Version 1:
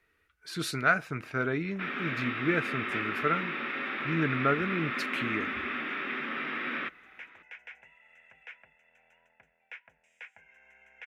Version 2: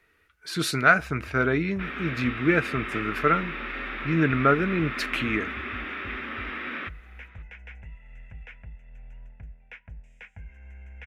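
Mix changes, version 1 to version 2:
speech +6.5 dB; first sound: remove HPF 610 Hz 12 dB/oct

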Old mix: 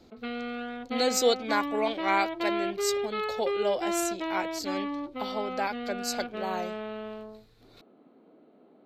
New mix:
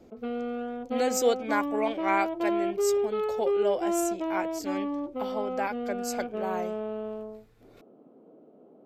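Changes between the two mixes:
background: add graphic EQ 125/500/2000 Hz +6/+6/-11 dB; master: add bell 4100 Hz -14 dB 0.53 oct

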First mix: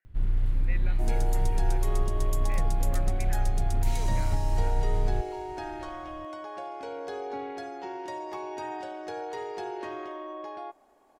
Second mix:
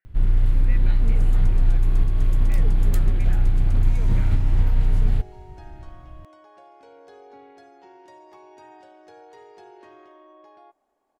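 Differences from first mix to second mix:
first sound +7.5 dB; second sound -11.5 dB

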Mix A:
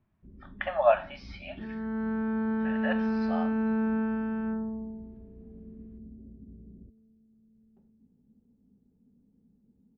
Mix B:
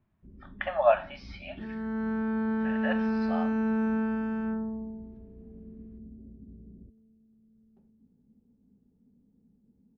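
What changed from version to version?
second sound: remove air absorption 160 m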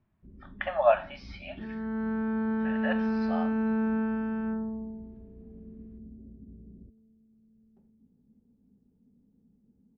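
second sound: add air absorption 140 m

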